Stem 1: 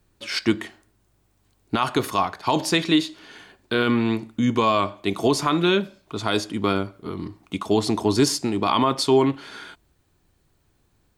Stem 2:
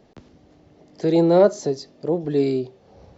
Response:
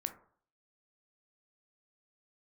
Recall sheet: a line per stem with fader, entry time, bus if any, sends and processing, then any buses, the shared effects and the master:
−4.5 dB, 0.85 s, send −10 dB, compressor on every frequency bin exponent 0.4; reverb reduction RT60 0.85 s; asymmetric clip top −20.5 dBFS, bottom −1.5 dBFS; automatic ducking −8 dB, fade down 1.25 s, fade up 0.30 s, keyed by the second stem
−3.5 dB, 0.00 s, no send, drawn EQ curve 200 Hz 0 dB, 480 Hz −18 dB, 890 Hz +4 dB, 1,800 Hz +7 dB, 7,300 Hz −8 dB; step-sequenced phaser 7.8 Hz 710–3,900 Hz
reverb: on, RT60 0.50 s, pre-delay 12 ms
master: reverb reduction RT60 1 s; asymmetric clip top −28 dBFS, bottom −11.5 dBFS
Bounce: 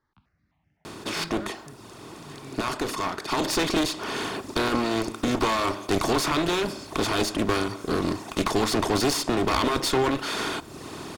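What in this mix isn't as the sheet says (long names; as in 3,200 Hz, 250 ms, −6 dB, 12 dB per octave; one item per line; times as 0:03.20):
stem 2 −3.5 dB → −14.0 dB
master: missing reverb reduction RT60 1 s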